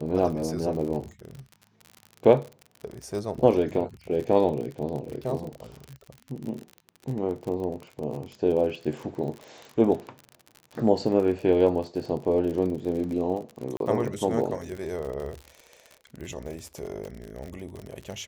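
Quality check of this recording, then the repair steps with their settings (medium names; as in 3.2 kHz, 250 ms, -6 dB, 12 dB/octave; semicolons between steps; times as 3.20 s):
crackle 47 per s -33 dBFS
13.77–13.80 s: dropout 32 ms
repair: de-click; interpolate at 13.77 s, 32 ms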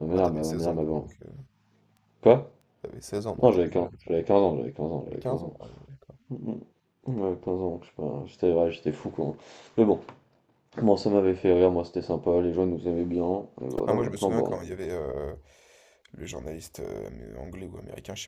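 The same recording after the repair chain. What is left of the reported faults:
nothing left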